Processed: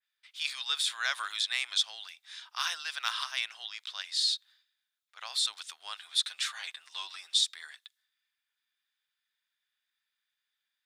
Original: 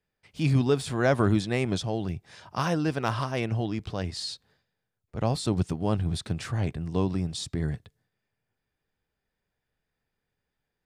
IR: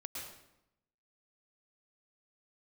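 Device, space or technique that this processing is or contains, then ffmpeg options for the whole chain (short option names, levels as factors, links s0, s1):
headphones lying on a table: -filter_complex "[0:a]highpass=f=1300:w=0.5412,highpass=f=1300:w=1.3066,equalizer=f=3600:t=o:w=0.35:g=10.5,asettb=1/sr,asplit=3[s0][s1][s2];[s0]atrim=end=6.014[s3];[s1]atrim=start=6.01:end=7.41,asetpts=PTS-STARTPTS,afade=t=in:d=0.004:c=qsin,afade=t=out:st=1.396:d=0.004:c=qsin,aecho=1:1:7.5:0.73,atrim=end_sample=61740[s4];[s2]atrim=start=7.406[s5];[s3][s4]acrossfade=d=0.004:c1=hsin:c2=qsin[s6];[s6][s5]acrossfade=d=0.004:c1=qsin:c2=hsin,adynamicequalizer=threshold=0.00794:dfrequency=3100:dqfactor=0.7:tfrequency=3100:tqfactor=0.7:attack=5:release=100:ratio=0.375:range=2:mode=boostabove:tftype=highshelf"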